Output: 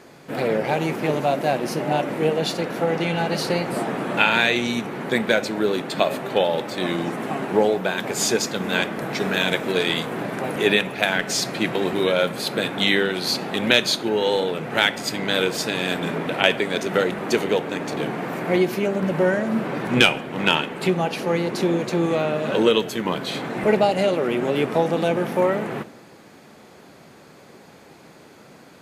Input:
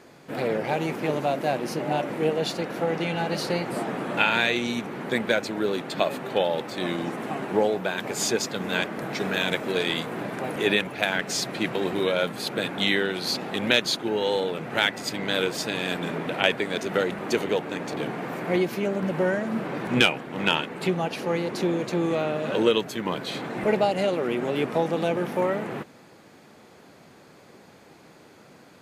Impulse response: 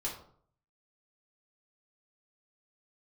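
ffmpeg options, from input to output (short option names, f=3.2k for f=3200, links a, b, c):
-filter_complex "[0:a]asplit=2[a][b];[1:a]atrim=start_sample=2205,asetrate=26460,aresample=44100,highshelf=f=8.3k:g=11.5[c];[b][c]afir=irnorm=-1:irlink=0,volume=-19dB[d];[a][d]amix=inputs=2:normalize=0,volume=3dB"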